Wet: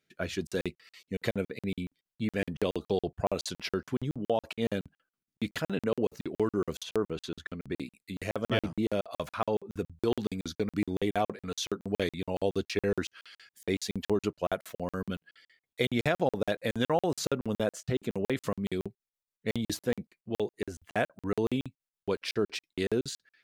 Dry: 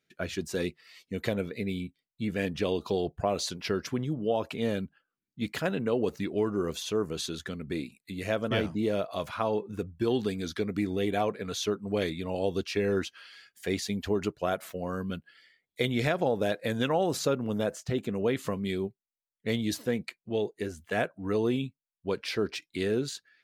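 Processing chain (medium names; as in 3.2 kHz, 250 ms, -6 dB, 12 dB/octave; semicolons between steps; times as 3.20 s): 6.83–7.80 s: tone controls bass -1 dB, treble -11 dB; crackling interface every 0.14 s, samples 2048, zero, from 0.47 s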